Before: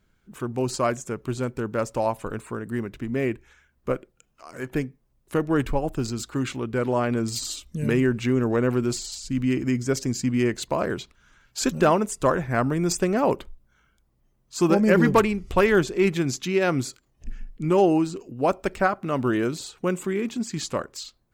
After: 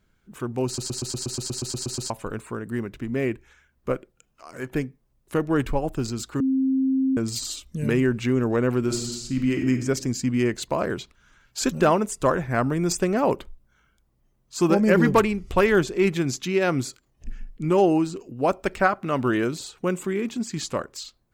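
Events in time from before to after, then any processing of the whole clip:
0.66 s: stutter in place 0.12 s, 12 plays
6.40–7.17 s: bleep 265 Hz -18.5 dBFS
8.79–9.70 s: reverb throw, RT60 1 s, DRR 3.5 dB
18.66–19.45 s: peaking EQ 2.1 kHz +3 dB 2.6 oct

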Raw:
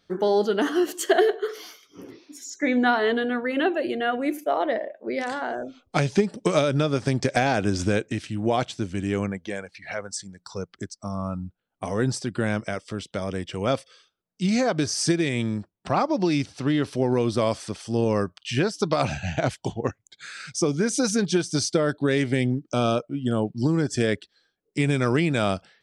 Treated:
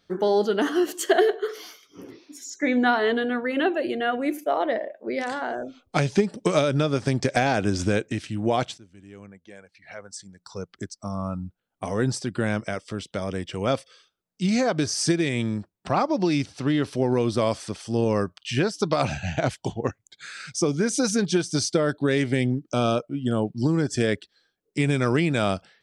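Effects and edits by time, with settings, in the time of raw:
8.78–10.84 s: fade in quadratic, from -21.5 dB

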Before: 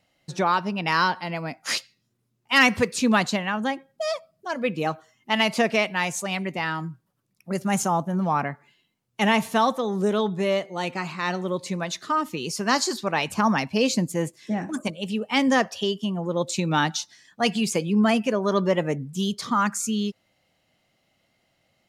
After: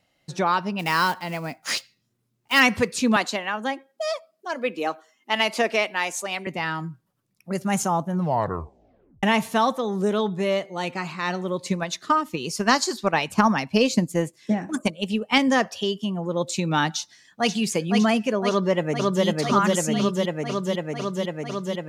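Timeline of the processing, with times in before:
0.79–2.61 s: block-companded coder 5-bit
3.16–6.47 s: high-pass 260 Hz 24 dB/octave
8.15 s: tape stop 1.08 s
11.62–15.38 s: transient shaper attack +6 dB, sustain -3 dB
16.97–17.53 s: echo throw 510 ms, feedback 70%, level -4 dB
18.49–19.25 s: echo throw 500 ms, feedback 85%, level -0.5 dB

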